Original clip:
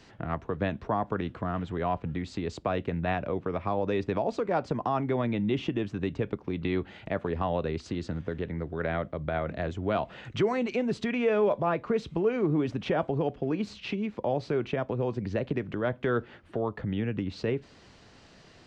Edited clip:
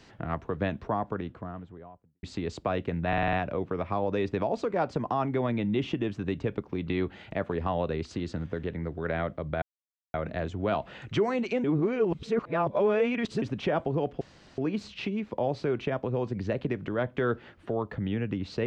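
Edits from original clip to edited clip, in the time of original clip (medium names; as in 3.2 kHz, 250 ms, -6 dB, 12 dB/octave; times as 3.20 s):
0.67–2.23 s: studio fade out
3.08 s: stutter 0.05 s, 6 plays
9.37 s: insert silence 0.52 s
10.87–12.65 s: reverse
13.44 s: insert room tone 0.37 s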